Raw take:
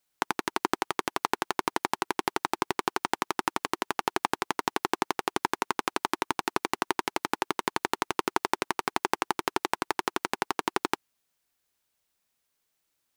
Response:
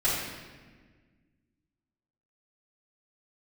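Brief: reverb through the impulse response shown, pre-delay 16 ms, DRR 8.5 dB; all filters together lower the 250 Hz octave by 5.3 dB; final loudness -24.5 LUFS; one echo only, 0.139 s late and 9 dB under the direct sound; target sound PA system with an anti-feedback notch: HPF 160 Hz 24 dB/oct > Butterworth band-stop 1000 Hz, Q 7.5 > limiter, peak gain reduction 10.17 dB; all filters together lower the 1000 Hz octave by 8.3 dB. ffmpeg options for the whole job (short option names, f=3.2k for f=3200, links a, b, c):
-filter_complex "[0:a]equalizer=f=250:t=o:g=-7,equalizer=f=1k:t=o:g=-8.5,aecho=1:1:139:0.355,asplit=2[a][b];[1:a]atrim=start_sample=2205,adelay=16[c];[b][c]afir=irnorm=-1:irlink=0,volume=-20.5dB[d];[a][d]amix=inputs=2:normalize=0,highpass=f=160:w=0.5412,highpass=f=160:w=1.3066,asuperstop=centerf=1000:order=8:qfactor=7.5,volume=15dB,alimiter=limit=-2dB:level=0:latency=1"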